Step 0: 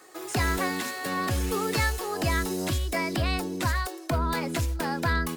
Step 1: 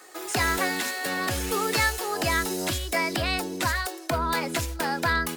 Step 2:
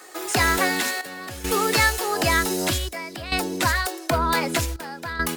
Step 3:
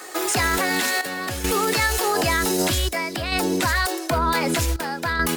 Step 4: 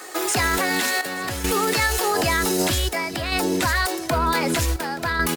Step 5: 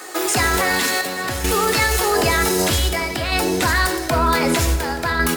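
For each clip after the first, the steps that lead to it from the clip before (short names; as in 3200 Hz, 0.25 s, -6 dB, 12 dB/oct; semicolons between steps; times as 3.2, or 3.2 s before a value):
low shelf 320 Hz -10 dB; notch 1100 Hz, Q 23; gain +4.5 dB
step gate "xxxxxxx...xxx" 104 bpm -12 dB; gain +4.5 dB
limiter -19.5 dBFS, peak gain reduction 10.5 dB; gain +7 dB
feedback echo 0.877 s, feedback 42%, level -19 dB
plate-style reverb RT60 1.4 s, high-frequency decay 0.8×, DRR 6.5 dB; gain +2.5 dB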